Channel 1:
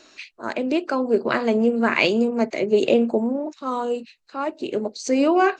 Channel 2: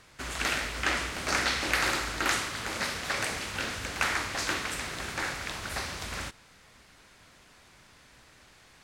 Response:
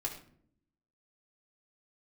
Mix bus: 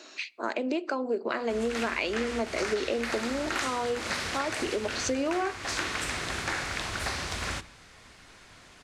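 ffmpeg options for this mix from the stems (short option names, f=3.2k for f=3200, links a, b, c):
-filter_complex "[0:a]highpass=260,volume=2dB,asplit=2[a][b];[b]volume=-20dB[c];[1:a]lowpass=10k,adelay=1300,volume=2.5dB,asplit=2[d][e];[e]volume=-12.5dB[f];[2:a]atrim=start_sample=2205[g];[c][f]amix=inputs=2:normalize=0[h];[h][g]afir=irnorm=-1:irlink=0[i];[a][d][i]amix=inputs=3:normalize=0,acompressor=threshold=-27dB:ratio=6"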